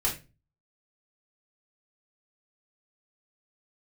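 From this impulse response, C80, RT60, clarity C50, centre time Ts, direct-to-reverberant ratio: 16.0 dB, 0.30 s, 9.5 dB, 22 ms, -5.5 dB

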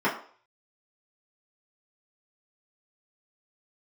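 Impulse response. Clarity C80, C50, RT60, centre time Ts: 12.5 dB, 9.0 dB, 0.50 s, 25 ms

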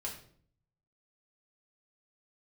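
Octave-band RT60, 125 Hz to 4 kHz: 1.0 s, 0.75 s, 0.60 s, 0.50 s, 0.45 s, 0.45 s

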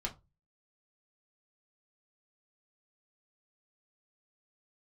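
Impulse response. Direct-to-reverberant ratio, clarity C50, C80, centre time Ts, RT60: -1.0 dB, 17.0 dB, 24.5 dB, 11 ms, 0.25 s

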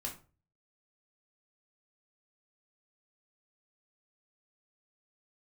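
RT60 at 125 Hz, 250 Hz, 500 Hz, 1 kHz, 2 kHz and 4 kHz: 0.60 s, 0.40 s, 0.40 s, 0.35 s, 0.30 s, 0.25 s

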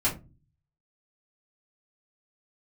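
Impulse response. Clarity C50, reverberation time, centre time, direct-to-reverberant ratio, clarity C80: 12.0 dB, no single decay rate, 19 ms, -8.5 dB, 19.5 dB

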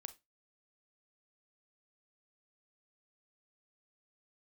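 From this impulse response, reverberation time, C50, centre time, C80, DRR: 0.20 s, 17.0 dB, 4 ms, 25.5 dB, 11.0 dB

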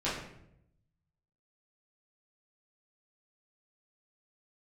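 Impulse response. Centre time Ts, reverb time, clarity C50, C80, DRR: 49 ms, 0.75 s, 3.0 dB, 6.5 dB, -10.5 dB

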